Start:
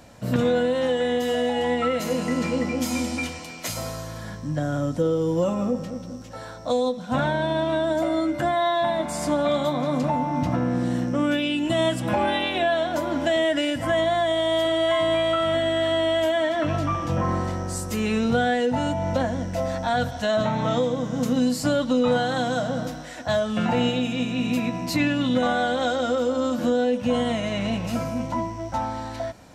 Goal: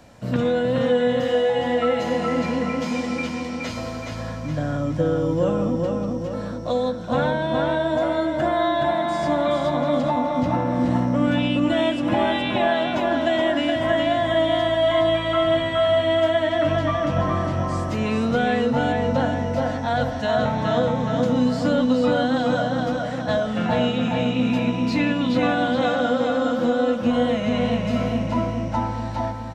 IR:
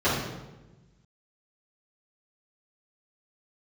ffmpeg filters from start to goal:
-filter_complex "[0:a]asplit=2[link_01][link_02];[link_02]adelay=420,lowpass=frequency=4400:poles=1,volume=-3dB,asplit=2[link_03][link_04];[link_04]adelay=420,lowpass=frequency=4400:poles=1,volume=0.53,asplit=2[link_05][link_06];[link_06]adelay=420,lowpass=frequency=4400:poles=1,volume=0.53,asplit=2[link_07][link_08];[link_08]adelay=420,lowpass=frequency=4400:poles=1,volume=0.53,asplit=2[link_09][link_10];[link_10]adelay=420,lowpass=frequency=4400:poles=1,volume=0.53,asplit=2[link_11][link_12];[link_12]adelay=420,lowpass=frequency=4400:poles=1,volume=0.53,asplit=2[link_13][link_14];[link_14]adelay=420,lowpass=frequency=4400:poles=1,volume=0.53[link_15];[link_01][link_03][link_05][link_07][link_09][link_11][link_13][link_15]amix=inputs=8:normalize=0,acrossover=split=290|5600[link_16][link_17][link_18];[link_18]asoftclip=type=tanh:threshold=-37.5dB[link_19];[link_16][link_17][link_19]amix=inputs=3:normalize=0,acrossover=split=6900[link_20][link_21];[link_21]acompressor=threshold=-58dB:ratio=4:attack=1:release=60[link_22];[link_20][link_22]amix=inputs=2:normalize=0,highshelf=frequency=6400:gain=-5.5"

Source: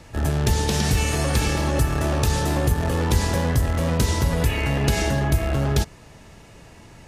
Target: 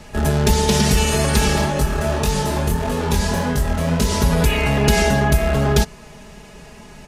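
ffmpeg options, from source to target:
ffmpeg -i in.wav -filter_complex "[0:a]aecho=1:1:4.8:0.75,asplit=3[link_01][link_02][link_03];[link_01]afade=type=out:start_time=1.65:duration=0.02[link_04];[link_02]flanger=delay=20:depth=6:speed=1.7,afade=type=in:start_time=1.65:duration=0.02,afade=type=out:start_time=4.1:duration=0.02[link_05];[link_03]afade=type=in:start_time=4.1:duration=0.02[link_06];[link_04][link_05][link_06]amix=inputs=3:normalize=0,volume=4dB" out.wav

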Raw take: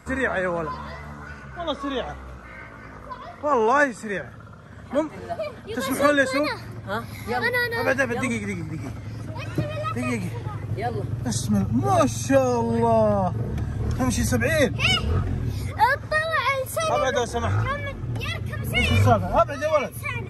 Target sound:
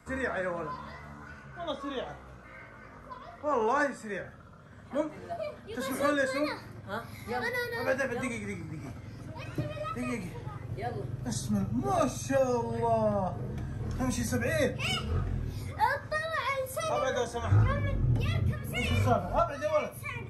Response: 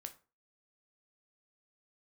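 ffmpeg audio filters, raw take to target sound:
-filter_complex "[0:a]asettb=1/sr,asplit=3[link_01][link_02][link_03];[link_01]atrim=end=17.514[link_04];[link_02]atrim=start=17.51:end=18.53,asetpts=PTS-STARTPTS,afade=type=in:duration=0.004:curve=qsin,afade=type=out:start_time=1.016:duration=0.004:curve=qsin,lowshelf=frequency=430:gain=11.5[link_05];[link_03]atrim=start=18.526[link_06];[link_04][link_05]acrossfade=duration=0.004:curve1=hsin:curve2=qsin[link_07];[link_07][link_06]acrossfade=duration=0.004:curve1=qsin:curve2=hsin,acrossover=split=110|1400|4600[link_08][link_09][link_10][link_11];[link_10]asoftclip=type=tanh:threshold=-23dB[link_12];[link_08][link_09][link_12][link_11]amix=inputs=4:normalize=0[link_13];[1:a]atrim=start_sample=2205[link_14];[link_13][link_14]afir=irnorm=-1:irlink=0,volume=-3.5dB"

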